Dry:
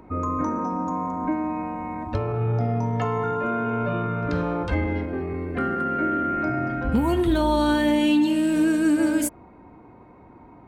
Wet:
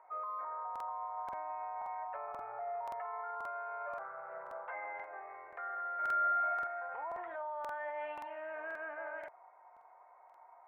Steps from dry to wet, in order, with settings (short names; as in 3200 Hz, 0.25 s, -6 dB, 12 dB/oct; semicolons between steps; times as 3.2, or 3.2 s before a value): 3.97–4.68 chord vocoder major triad, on C3; elliptic band-pass 670–2100 Hz, stop band 50 dB; tilt shelf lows +5 dB, about 1300 Hz; limiter -27 dBFS, peak gain reduction 11 dB; 5.95–6.67 flutter echo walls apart 7.5 m, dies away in 1 s; crackling interface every 0.53 s, samples 2048, repeat, from 0.71; gain -7 dB